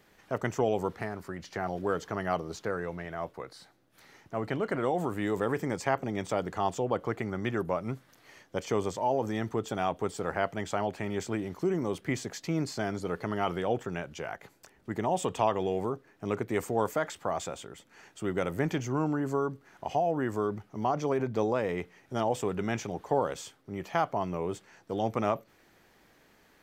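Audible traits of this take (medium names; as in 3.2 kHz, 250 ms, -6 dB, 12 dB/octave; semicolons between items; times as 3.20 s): noise floor -63 dBFS; spectral tilt -5.5 dB/octave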